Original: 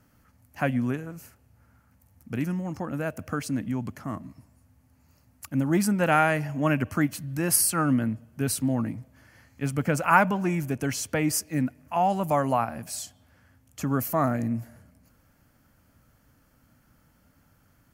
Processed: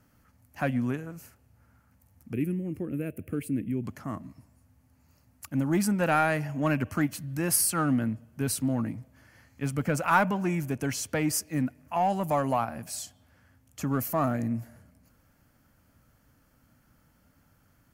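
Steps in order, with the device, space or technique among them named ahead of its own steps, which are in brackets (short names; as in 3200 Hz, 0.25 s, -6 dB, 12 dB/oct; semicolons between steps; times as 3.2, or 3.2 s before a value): parallel distortion (in parallel at -5.5 dB: hard clip -20 dBFS, distortion -11 dB); 2.33–3.84 on the sum: EQ curve 250 Hz 0 dB, 380 Hz +7 dB, 830 Hz -20 dB, 1500 Hz -13 dB, 2400 Hz 0 dB, 5800 Hz -21 dB, 9700 Hz +1 dB; gain -5.5 dB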